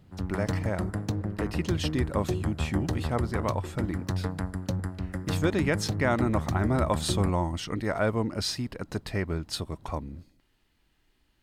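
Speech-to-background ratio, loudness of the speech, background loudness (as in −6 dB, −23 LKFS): 2.0 dB, −30.5 LKFS, −32.5 LKFS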